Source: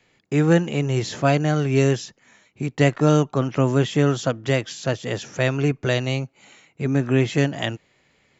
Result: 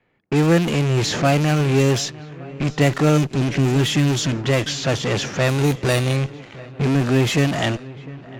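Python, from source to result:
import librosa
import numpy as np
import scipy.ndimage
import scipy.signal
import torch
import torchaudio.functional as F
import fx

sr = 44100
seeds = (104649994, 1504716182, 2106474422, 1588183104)

p1 = fx.rattle_buzz(x, sr, strikes_db=-27.0, level_db=-27.0)
p2 = fx.spec_erase(p1, sr, start_s=3.18, length_s=1.18, low_hz=410.0, high_hz=1500.0)
p3 = fx.fuzz(p2, sr, gain_db=41.0, gate_db=-46.0)
p4 = p2 + (p3 * librosa.db_to_amplitude(-8.0))
p5 = fx.sample_hold(p4, sr, seeds[0], rate_hz=6400.0, jitter_pct=0, at=(5.49, 6.16))
p6 = p5 + fx.echo_swing(p5, sr, ms=1168, ratio=1.5, feedback_pct=46, wet_db=-20.0, dry=0)
p7 = fx.env_lowpass(p6, sr, base_hz=1900.0, full_db=-11.5)
y = p7 * librosa.db_to_amplitude(-2.0)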